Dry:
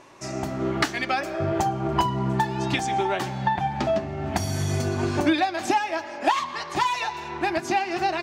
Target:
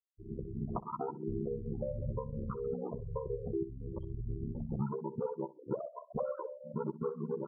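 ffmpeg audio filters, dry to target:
ffmpeg -i in.wav -filter_complex "[0:a]afftfilt=real='re*gte(hypot(re,im),0.126)':imag='im*gte(hypot(re,im),0.126)':win_size=1024:overlap=0.75,aecho=1:1:6.1:0.53,acompressor=threshold=-22dB:ratio=3,asetrate=24750,aresample=44100,atempo=1.7818,aeval=exprs='val(0)*sin(2*PI*34*n/s)':channel_layout=same,atempo=1.1,asuperstop=centerf=2200:order=12:qfactor=0.94,asplit=2[link_01][link_02];[link_02]aecho=0:1:63|126:0.119|0.0226[link_03];[link_01][link_03]amix=inputs=2:normalize=0,volume=-8dB" out.wav

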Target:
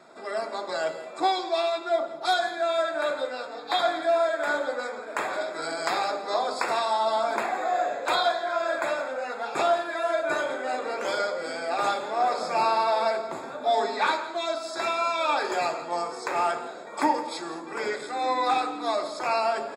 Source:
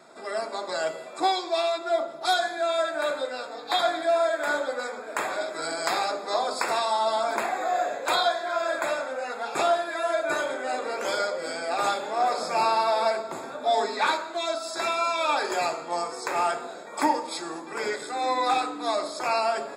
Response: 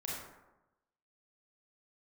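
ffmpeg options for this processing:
-af "highshelf=frequency=7400:gain=-9.5,aecho=1:1:168:0.168"

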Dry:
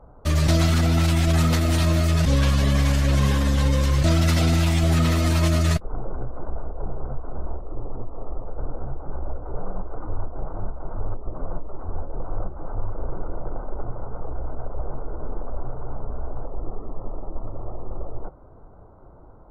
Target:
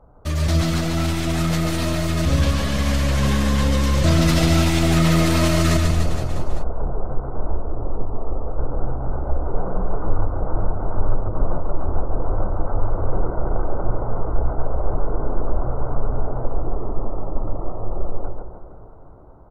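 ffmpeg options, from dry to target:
ffmpeg -i in.wav -af "aecho=1:1:140|294|463.4|649.7|854.7:0.631|0.398|0.251|0.158|0.1,dynaudnorm=framelen=890:gausssize=7:maxgain=11.5dB,volume=-2.5dB" out.wav

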